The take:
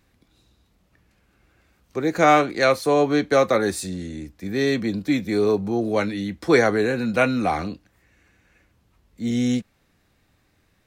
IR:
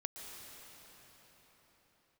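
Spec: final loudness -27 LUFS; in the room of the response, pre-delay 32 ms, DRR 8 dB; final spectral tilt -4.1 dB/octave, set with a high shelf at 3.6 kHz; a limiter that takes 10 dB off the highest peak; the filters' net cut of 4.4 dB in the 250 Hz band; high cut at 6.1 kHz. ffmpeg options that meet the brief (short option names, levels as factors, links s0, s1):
-filter_complex "[0:a]lowpass=6100,equalizer=f=250:t=o:g=-5.5,highshelf=f=3600:g=4.5,alimiter=limit=0.2:level=0:latency=1,asplit=2[s0][s1];[1:a]atrim=start_sample=2205,adelay=32[s2];[s1][s2]afir=irnorm=-1:irlink=0,volume=0.447[s3];[s0][s3]amix=inputs=2:normalize=0,volume=0.794"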